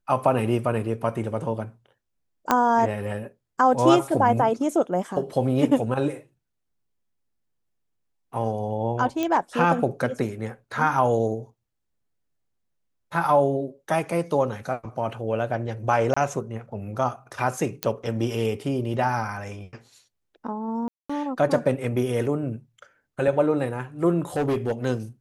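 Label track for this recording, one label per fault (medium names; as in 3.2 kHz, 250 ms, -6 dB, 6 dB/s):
2.510000	2.510000	pop -6 dBFS
9.230000	9.230000	pop -13 dBFS
16.140000	16.160000	dropout 25 ms
17.830000	17.830000	pop -7 dBFS
20.880000	21.090000	dropout 215 ms
24.360000	24.720000	clipped -19.5 dBFS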